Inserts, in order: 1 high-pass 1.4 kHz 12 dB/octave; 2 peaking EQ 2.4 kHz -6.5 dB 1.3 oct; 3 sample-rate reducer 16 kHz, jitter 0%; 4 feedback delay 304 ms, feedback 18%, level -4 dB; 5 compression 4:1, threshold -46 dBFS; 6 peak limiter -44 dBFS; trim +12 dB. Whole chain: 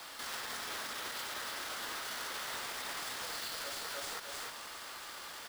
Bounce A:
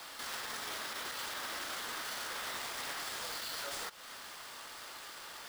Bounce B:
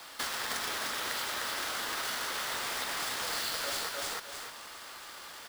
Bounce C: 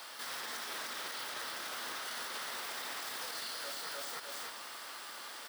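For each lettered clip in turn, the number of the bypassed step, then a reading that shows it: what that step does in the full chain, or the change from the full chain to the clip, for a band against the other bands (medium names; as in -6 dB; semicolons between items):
4, momentary loudness spread change +2 LU; 6, mean gain reduction 4.0 dB; 3, 125 Hz band -5.5 dB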